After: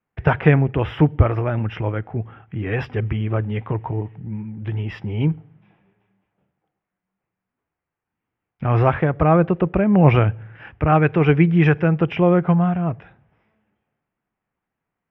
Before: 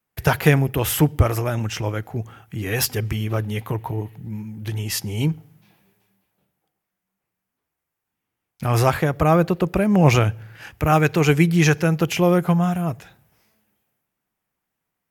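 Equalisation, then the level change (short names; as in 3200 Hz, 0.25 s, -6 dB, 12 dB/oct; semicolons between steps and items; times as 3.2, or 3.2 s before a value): polynomial smoothing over 25 samples; air absorption 290 m; +2.0 dB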